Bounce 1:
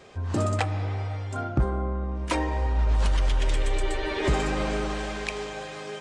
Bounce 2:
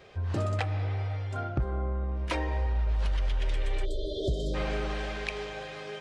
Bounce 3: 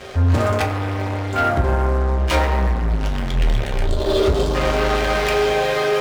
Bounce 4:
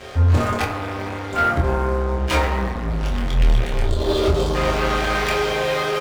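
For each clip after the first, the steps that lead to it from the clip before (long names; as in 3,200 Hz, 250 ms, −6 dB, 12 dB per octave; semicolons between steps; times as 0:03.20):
time-frequency box erased 0:03.85–0:04.54, 740–3,100 Hz; octave-band graphic EQ 250/1,000/8,000 Hz −8/−5/−12 dB; downward compressor 4 to 1, threshold −25 dBFS, peak gain reduction 6 dB
leveller curve on the samples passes 5; convolution reverb RT60 1.0 s, pre-delay 6 ms, DRR 0.5 dB
double-tracking delay 25 ms −4 dB; level −2 dB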